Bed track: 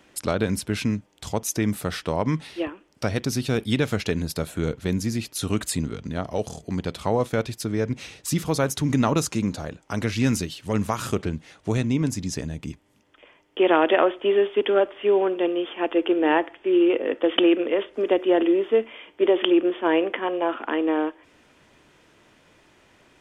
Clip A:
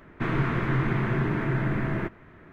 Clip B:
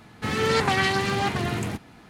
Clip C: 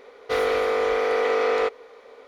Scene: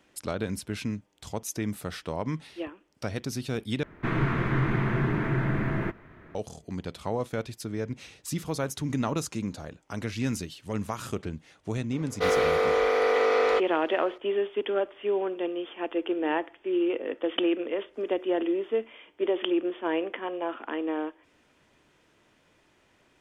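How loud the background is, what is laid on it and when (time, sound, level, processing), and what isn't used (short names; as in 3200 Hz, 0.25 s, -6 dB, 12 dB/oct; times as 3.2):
bed track -7.5 dB
3.83 replace with A -0.5 dB
11.91 add C -1 dB
not used: B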